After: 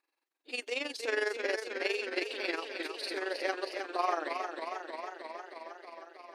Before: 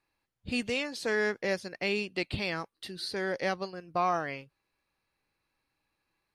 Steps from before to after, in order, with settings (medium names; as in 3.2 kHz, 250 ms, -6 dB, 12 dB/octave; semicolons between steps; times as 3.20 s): brick-wall FIR high-pass 270 Hz; AM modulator 22 Hz, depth 55%; modulated delay 315 ms, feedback 76%, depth 78 cents, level -6.5 dB